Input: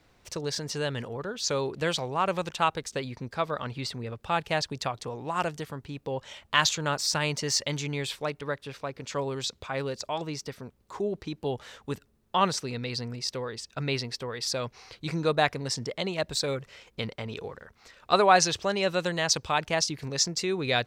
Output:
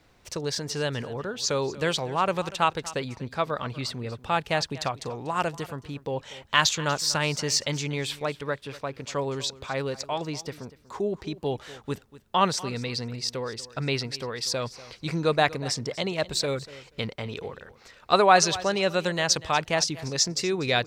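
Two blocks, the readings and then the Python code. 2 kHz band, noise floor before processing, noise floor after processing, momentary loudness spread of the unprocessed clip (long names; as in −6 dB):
+2.0 dB, −66 dBFS, −56 dBFS, 12 LU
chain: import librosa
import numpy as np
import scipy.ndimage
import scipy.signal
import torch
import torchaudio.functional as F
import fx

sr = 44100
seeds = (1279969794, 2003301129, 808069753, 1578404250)

y = fx.echo_feedback(x, sr, ms=241, feedback_pct=16, wet_db=-18.0)
y = y * 10.0 ** (2.0 / 20.0)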